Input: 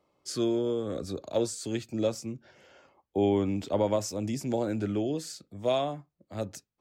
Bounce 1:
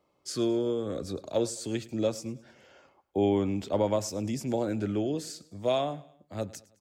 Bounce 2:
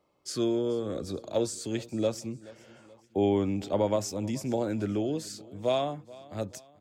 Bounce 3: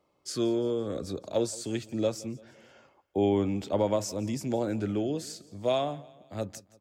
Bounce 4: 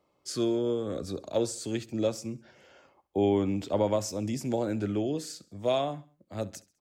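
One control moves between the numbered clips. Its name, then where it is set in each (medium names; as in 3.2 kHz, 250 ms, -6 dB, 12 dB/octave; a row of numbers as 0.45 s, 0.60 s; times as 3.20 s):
feedback delay, time: 106 ms, 429 ms, 170 ms, 67 ms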